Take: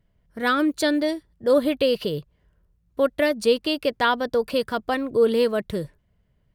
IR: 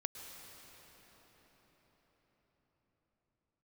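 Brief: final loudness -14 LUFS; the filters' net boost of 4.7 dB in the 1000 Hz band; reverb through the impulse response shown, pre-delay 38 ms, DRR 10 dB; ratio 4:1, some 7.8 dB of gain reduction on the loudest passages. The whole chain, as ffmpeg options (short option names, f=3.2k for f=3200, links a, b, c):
-filter_complex "[0:a]equalizer=f=1k:t=o:g=6,acompressor=threshold=-22dB:ratio=4,asplit=2[a][b];[1:a]atrim=start_sample=2205,adelay=38[c];[b][c]afir=irnorm=-1:irlink=0,volume=-9dB[d];[a][d]amix=inputs=2:normalize=0,volume=12.5dB"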